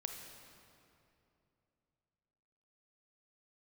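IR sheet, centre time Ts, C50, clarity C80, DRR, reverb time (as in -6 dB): 63 ms, 4.5 dB, 5.5 dB, 3.5 dB, 2.8 s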